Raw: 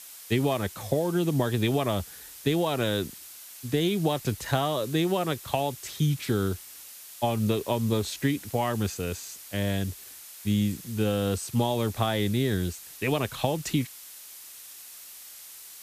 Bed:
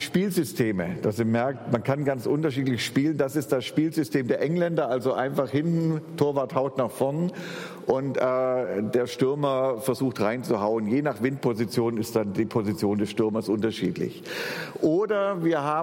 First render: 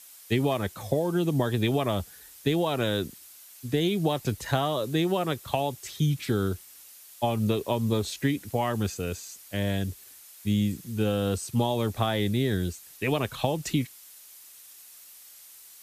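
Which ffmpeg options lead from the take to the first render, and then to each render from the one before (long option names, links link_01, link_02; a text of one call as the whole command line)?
ffmpeg -i in.wav -af "afftdn=noise_reduction=6:noise_floor=-46" out.wav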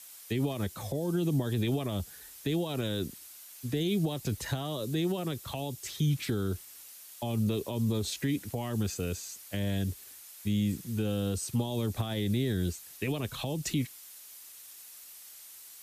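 ffmpeg -i in.wav -filter_complex "[0:a]alimiter=limit=-20dB:level=0:latency=1:release=43,acrossover=split=400|3000[link_01][link_02][link_03];[link_02]acompressor=threshold=-40dB:ratio=6[link_04];[link_01][link_04][link_03]amix=inputs=3:normalize=0" out.wav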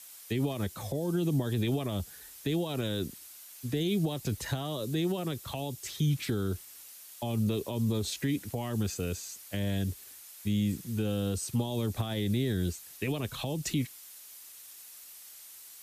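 ffmpeg -i in.wav -af anull out.wav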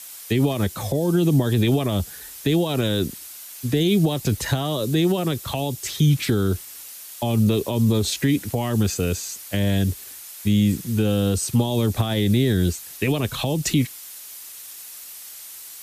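ffmpeg -i in.wav -af "volume=10.5dB" out.wav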